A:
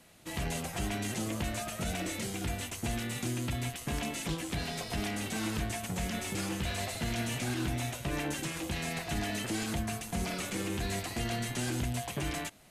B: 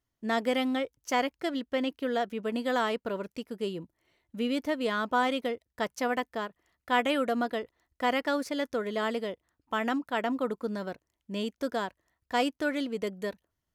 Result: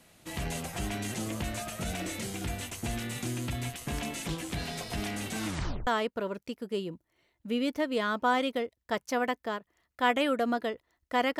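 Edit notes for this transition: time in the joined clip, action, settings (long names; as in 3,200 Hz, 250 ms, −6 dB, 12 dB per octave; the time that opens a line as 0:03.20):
A
0:05.46: tape stop 0.41 s
0:05.87: continue with B from 0:02.76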